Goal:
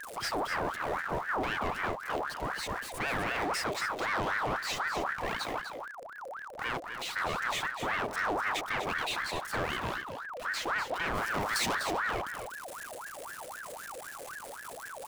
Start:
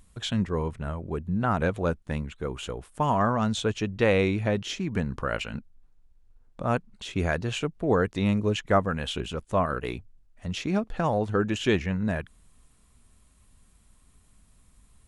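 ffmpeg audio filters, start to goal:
-filter_complex "[0:a]aeval=exprs='val(0)+0.5*0.0158*sgn(val(0))':c=same,acrossover=split=150[s0][s1];[s1]alimiter=limit=0.178:level=0:latency=1:release=99[s2];[s0][s2]amix=inputs=2:normalize=0,volume=21.1,asoftclip=hard,volume=0.0473,asettb=1/sr,asplit=3[s3][s4][s5];[s3]atrim=end=11.154[s6];[s4]atrim=start=11.15:end=11.75,asetpts=PTS-STARTPTS,afade=t=in:d=0.004:c=qsin,afade=t=out:st=0.596:d=0.004:c=qsin,highshelf=f=4100:g=11[s7];[s5]atrim=start=11.746[s8];[s6][s7]acrossfade=d=0.004:c1=hsin:c2=qsin[s9];[s9][s8]acrossfade=d=0.004:c1=qsin:c2=hsin,aecho=1:1:248:0.355,aeval=exprs='val(0)*sin(2*PI*1100*n/s+1100*0.55/3.9*sin(2*PI*3.9*n/s))':c=same"

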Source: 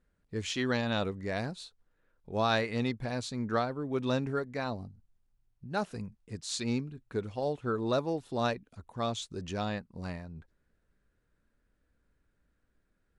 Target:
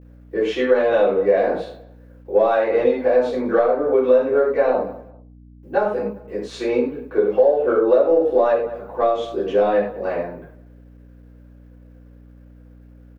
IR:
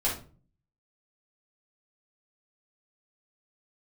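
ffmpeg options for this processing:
-filter_complex "[0:a]highpass=150,acrossover=split=250 4200:gain=0.0631 1 0.224[s0][s1][s2];[s0][s1][s2]amix=inputs=3:normalize=0,asplit=2[s3][s4];[s4]asoftclip=type=tanh:threshold=0.0376,volume=0.531[s5];[s3][s5]amix=inputs=2:normalize=0[s6];[1:a]atrim=start_sample=2205,atrim=end_sample=3969,asetrate=30429,aresample=44100[s7];[s6][s7]afir=irnorm=-1:irlink=0,acrusher=bits=10:mix=0:aa=0.000001,aeval=exprs='val(0)+0.00631*(sin(2*PI*60*n/s)+sin(2*PI*2*60*n/s)/2+sin(2*PI*3*60*n/s)/3+sin(2*PI*4*60*n/s)/4+sin(2*PI*5*60*n/s)/5)':c=same,asplit=2[s8][s9];[s9]adelay=196,lowpass=f=2900:p=1,volume=0.0944,asplit=2[s10][s11];[s11]adelay=196,lowpass=f=2900:p=1,volume=0.24[s12];[s10][s12]amix=inputs=2:normalize=0[s13];[s8][s13]amix=inputs=2:normalize=0,acompressor=threshold=0.1:ratio=6,equalizer=f=500:t=o:w=1:g=10,equalizer=f=4000:t=o:w=1:g=-7,equalizer=f=8000:t=o:w=1:g=-10"

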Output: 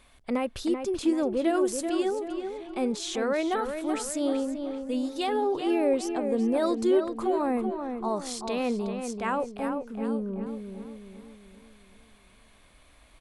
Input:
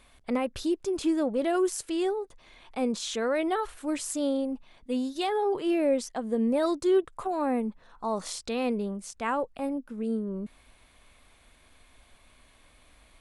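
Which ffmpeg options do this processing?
-filter_complex "[0:a]asplit=2[s0][s1];[s1]adelay=384,lowpass=f=2700:p=1,volume=0.473,asplit=2[s2][s3];[s3]adelay=384,lowpass=f=2700:p=1,volume=0.47,asplit=2[s4][s5];[s5]adelay=384,lowpass=f=2700:p=1,volume=0.47,asplit=2[s6][s7];[s7]adelay=384,lowpass=f=2700:p=1,volume=0.47,asplit=2[s8][s9];[s9]adelay=384,lowpass=f=2700:p=1,volume=0.47,asplit=2[s10][s11];[s11]adelay=384,lowpass=f=2700:p=1,volume=0.47[s12];[s0][s2][s4][s6][s8][s10][s12]amix=inputs=7:normalize=0"

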